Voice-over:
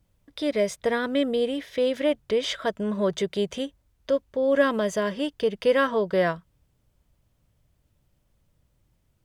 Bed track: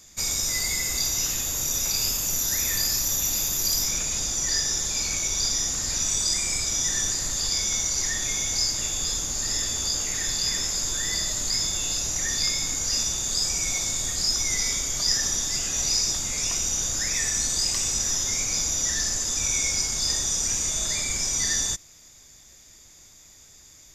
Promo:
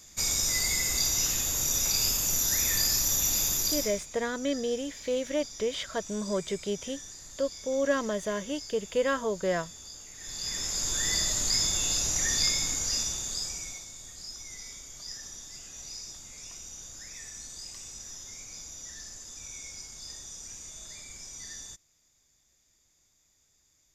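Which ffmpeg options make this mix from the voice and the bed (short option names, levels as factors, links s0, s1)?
-filter_complex "[0:a]adelay=3300,volume=0.501[s0];[1:a]volume=6.68,afade=t=out:st=3.51:d=0.55:silence=0.133352,afade=t=in:st=10.17:d=0.91:silence=0.125893,afade=t=out:st=12.41:d=1.45:silence=0.141254[s1];[s0][s1]amix=inputs=2:normalize=0"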